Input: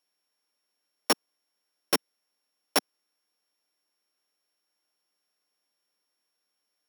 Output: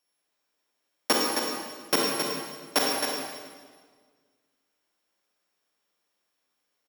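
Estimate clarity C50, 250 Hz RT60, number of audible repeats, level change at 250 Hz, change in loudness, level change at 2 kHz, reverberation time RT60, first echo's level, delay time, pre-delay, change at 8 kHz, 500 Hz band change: -2.0 dB, 1.8 s, 1, +6.0 dB, +2.0 dB, +5.0 dB, 1.6 s, -6.0 dB, 267 ms, 29 ms, +4.5 dB, +6.0 dB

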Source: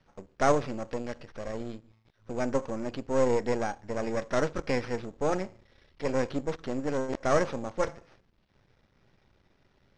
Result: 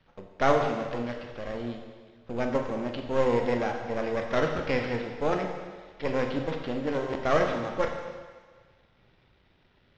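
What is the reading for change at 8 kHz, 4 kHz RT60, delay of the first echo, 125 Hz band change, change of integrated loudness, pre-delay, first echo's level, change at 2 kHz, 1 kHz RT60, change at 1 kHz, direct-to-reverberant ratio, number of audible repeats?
no reading, 1.6 s, no echo, +1.5 dB, +1.5 dB, 14 ms, no echo, +3.5 dB, 1.6 s, +2.5 dB, 3.0 dB, no echo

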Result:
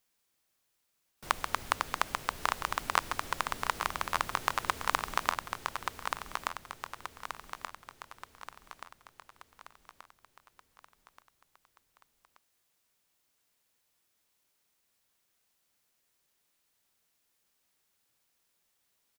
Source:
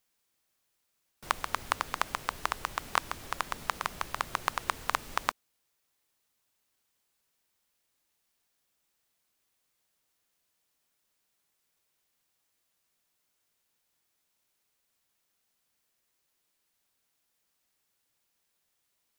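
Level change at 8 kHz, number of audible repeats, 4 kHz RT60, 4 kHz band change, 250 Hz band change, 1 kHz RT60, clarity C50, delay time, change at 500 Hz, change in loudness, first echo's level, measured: +1.5 dB, 5, no reverb, +1.5 dB, +1.5 dB, no reverb, no reverb, 1179 ms, +1.5 dB, -0.5 dB, -5.0 dB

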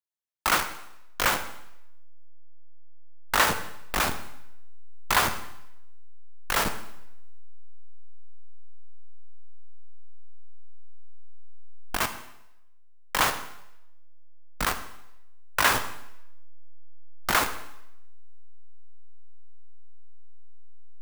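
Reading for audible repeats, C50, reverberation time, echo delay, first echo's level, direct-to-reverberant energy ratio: no echo, 10.5 dB, 0.80 s, no echo, no echo, 7.5 dB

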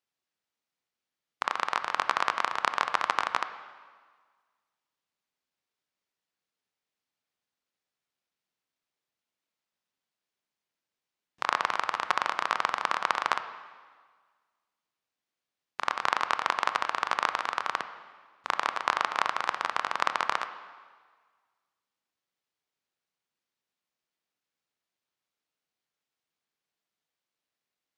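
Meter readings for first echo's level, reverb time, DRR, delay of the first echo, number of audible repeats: no echo, 1.6 s, 9.5 dB, no echo, no echo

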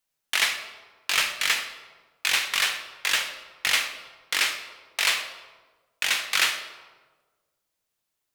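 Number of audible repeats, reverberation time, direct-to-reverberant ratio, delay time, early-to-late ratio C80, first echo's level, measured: no echo, 1.4 s, 5.0 dB, no echo, 9.5 dB, no echo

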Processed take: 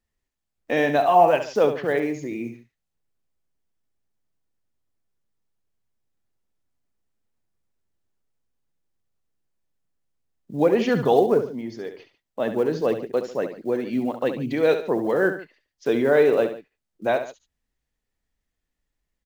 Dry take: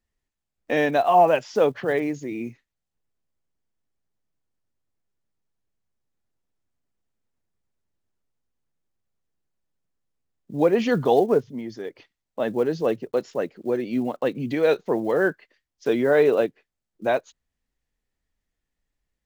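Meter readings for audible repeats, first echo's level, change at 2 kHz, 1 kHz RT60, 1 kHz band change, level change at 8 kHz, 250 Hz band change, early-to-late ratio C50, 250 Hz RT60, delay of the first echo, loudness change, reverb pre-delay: 2, -9.5 dB, +0.5 dB, no reverb, +0.5 dB, no reading, +0.5 dB, no reverb, no reverb, 69 ms, +0.5 dB, no reverb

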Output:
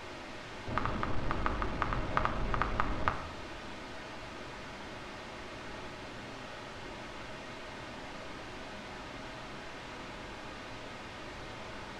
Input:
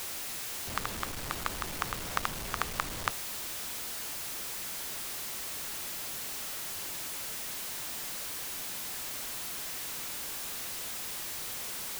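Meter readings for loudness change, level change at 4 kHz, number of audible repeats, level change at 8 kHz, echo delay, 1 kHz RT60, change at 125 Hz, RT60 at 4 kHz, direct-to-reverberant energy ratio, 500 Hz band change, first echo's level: -4.5 dB, -8.0 dB, no echo, -20.5 dB, no echo, 0.70 s, +6.0 dB, 0.50 s, 3.0 dB, +5.0 dB, no echo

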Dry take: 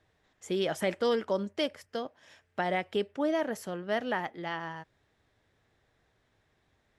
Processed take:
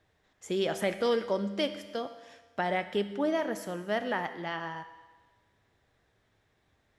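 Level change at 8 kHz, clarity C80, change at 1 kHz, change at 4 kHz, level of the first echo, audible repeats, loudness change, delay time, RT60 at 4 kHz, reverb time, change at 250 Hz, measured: +0.5 dB, 13.0 dB, +0.5 dB, +0.5 dB, no echo, no echo, +0.5 dB, no echo, 1.3 s, 1.3 s, +0.5 dB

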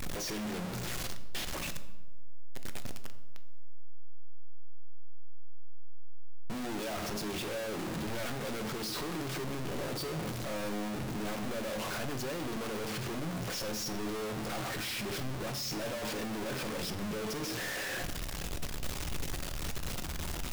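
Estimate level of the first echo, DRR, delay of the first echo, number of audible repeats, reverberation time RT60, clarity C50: no echo, 8.5 dB, no echo, no echo, 1.1 s, 12.5 dB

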